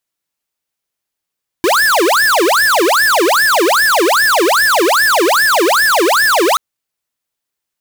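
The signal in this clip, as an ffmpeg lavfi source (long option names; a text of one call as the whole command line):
ffmpeg -f lavfi -i "aevalsrc='0.282*(2*lt(mod((1048.5*t-721.5/(2*PI*2.5)*sin(2*PI*2.5*t)),1),0.5)-1)':duration=4.93:sample_rate=44100" out.wav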